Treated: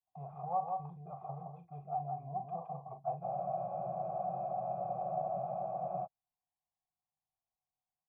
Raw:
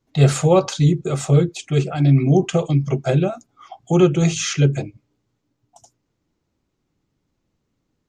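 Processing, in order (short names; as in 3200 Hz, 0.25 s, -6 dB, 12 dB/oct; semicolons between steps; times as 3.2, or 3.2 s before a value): EQ curve 180 Hz 0 dB, 310 Hz -20 dB, 760 Hz 0 dB, 1700 Hz -12 dB; gate -46 dBFS, range -7 dB; compressor 2.5:1, threshold -20 dBFS, peak gain reduction 7.5 dB; soft clip -14.5 dBFS, distortion -22 dB; vocal tract filter a; doubler 41 ms -9.5 dB; echo 0.167 s -4 dB; spectral freeze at 3.26, 2.79 s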